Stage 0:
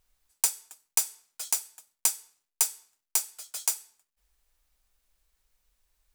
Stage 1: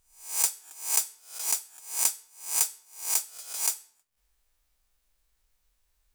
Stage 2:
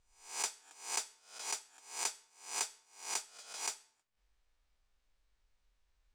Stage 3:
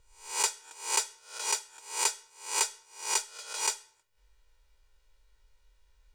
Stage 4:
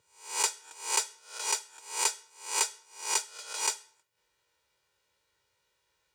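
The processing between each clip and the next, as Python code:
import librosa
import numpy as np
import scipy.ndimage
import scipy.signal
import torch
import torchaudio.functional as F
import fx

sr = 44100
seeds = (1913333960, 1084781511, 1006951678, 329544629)

y1 = fx.spec_swells(x, sr, rise_s=0.46)
y1 = y1 * librosa.db_to_amplitude(-2.0)
y2 = fx.air_absorb(y1, sr, metres=99.0)
y2 = y2 * librosa.db_to_amplitude(-2.0)
y3 = y2 + 0.92 * np.pad(y2, (int(2.1 * sr / 1000.0), 0))[:len(y2)]
y3 = y3 * librosa.db_to_amplitude(6.5)
y4 = scipy.signal.sosfilt(scipy.signal.butter(4, 110.0, 'highpass', fs=sr, output='sos'), y3)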